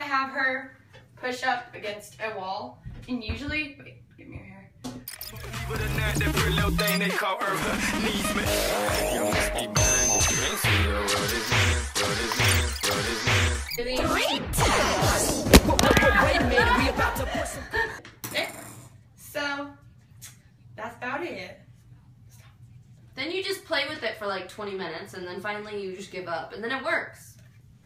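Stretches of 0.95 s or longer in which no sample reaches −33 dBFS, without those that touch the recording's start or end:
0:21.52–0:23.18

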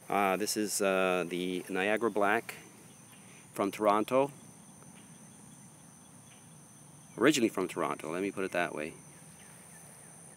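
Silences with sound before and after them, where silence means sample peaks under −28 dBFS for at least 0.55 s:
0:02.50–0:03.56
0:04.26–0:07.21

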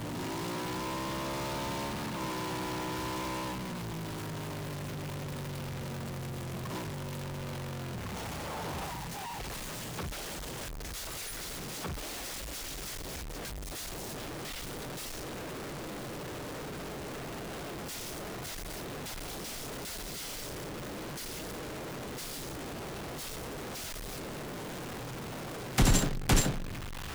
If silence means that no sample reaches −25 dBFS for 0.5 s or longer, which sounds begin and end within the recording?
0:25.78–0:26.50

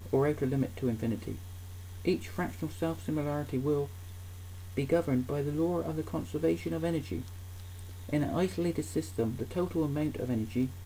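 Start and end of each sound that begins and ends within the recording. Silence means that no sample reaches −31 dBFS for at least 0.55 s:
0:02.05–0:03.84
0:04.78–0:07.21

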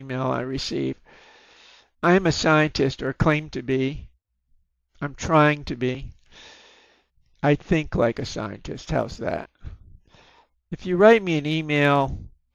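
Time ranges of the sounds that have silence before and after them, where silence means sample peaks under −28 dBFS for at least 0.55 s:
0:02.03–0:03.99
0:05.02–0:06.05
0:07.43–0:09.68

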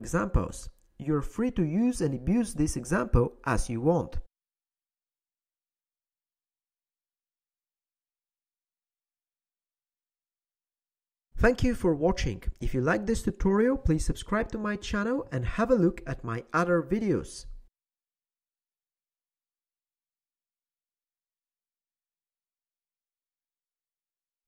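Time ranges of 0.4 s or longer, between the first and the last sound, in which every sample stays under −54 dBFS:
0:04.26–0:11.35

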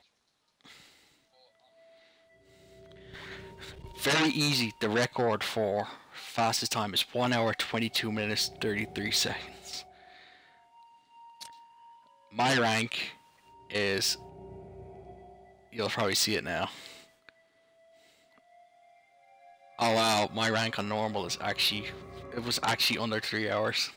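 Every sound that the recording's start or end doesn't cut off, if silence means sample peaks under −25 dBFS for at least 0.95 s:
0:04.03–0:09.32
0:12.39–0:14.13
0:15.79–0:16.64

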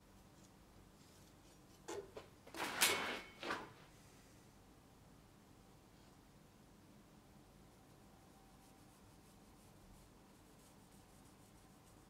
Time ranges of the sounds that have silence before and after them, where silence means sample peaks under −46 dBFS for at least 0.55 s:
0:01.88–0:03.64

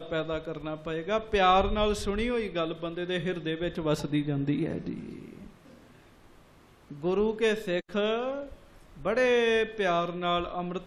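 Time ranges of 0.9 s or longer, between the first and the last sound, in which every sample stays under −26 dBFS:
0:04.91–0:07.05

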